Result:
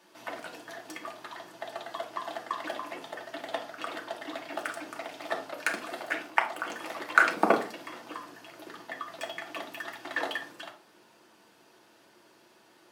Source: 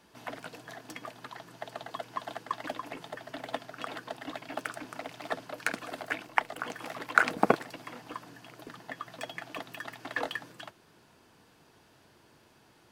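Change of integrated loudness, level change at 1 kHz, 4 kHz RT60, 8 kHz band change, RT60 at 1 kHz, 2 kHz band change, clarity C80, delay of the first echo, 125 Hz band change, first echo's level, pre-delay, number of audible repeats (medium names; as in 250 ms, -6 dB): +2.5 dB, +2.0 dB, 0.30 s, +2.0 dB, 0.40 s, +3.0 dB, 16.5 dB, no echo, -6.5 dB, no echo, 3 ms, no echo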